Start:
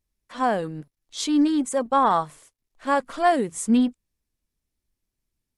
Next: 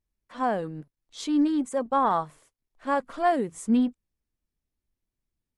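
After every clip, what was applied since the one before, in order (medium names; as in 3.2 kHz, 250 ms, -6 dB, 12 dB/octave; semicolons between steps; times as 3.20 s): treble shelf 2.6 kHz -7.5 dB; trim -3 dB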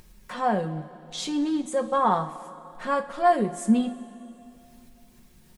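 comb 5.5 ms, depth 55%; upward compressor, threshold -29 dBFS; two-slope reverb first 0.29 s, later 2.9 s, from -17 dB, DRR 5.5 dB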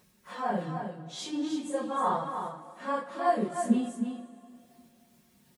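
phase randomisation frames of 100 ms; high-pass 130 Hz 12 dB/octave; delay 310 ms -7 dB; trim -6 dB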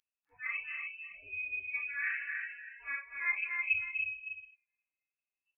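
frequency inversion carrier 2.8 kHz; spectral noise reduction 28 dB; loudspeakers at several distances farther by 85 m -8 dB, 100 m -8 dB; trim -7.5 dB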